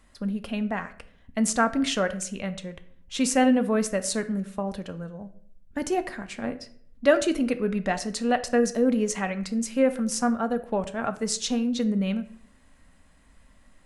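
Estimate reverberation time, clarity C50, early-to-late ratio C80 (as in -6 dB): 0.60 s, 15.0 dB, 18.5 dB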